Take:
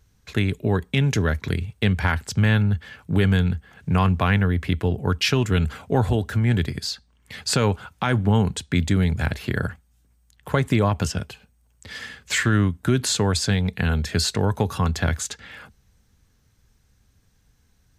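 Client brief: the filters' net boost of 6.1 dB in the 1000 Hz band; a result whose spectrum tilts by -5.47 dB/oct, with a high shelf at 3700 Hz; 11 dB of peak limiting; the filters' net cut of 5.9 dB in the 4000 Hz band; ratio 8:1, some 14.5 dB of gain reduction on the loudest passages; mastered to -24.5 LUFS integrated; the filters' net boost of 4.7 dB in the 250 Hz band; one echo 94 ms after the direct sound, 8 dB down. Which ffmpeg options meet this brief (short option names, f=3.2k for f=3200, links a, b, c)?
-af "equalizer=f=250:t=o:g=6,equalizer=f=1k:t=o:g=8,highshelf=f=3.7k:g=-5.5,equalizer=f=4k:t=o:g=-4.5,acompressor=threshold=-27dB:ratio=8,alimiter=limit=-23dB:level=0:latency=1,aecho=1:1:94:0.398,volume=9.5dB"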